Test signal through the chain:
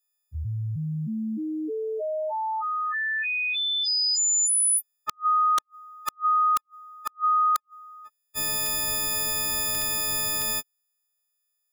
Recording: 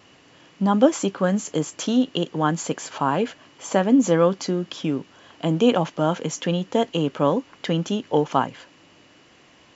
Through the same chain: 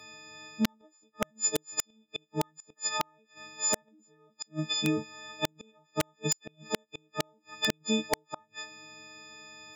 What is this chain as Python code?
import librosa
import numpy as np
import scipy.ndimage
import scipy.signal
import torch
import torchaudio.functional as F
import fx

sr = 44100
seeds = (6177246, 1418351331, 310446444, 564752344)

y = fx.freq_snap(x, sr, grid_st=6)
y = fx.gate_flip(y, sr, shuts_db=-12.0, range_db=-41)
y = (np.mod(10.0 ** (12.5 / 20.0) * y + 1.0, 2.0) - 1.0) / 10.0 ** (12.5 / 20.0)
y = y * 10.0 ** (-4.0 / 20.0)